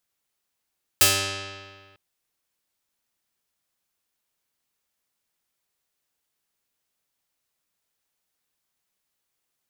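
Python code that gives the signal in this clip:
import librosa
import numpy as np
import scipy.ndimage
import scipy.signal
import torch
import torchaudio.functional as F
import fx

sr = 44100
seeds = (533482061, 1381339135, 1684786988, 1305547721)

y = fx.pluck(sr, length_s=0.95, note=43, decay_s=1.75, pick=0.42, brightness='medium')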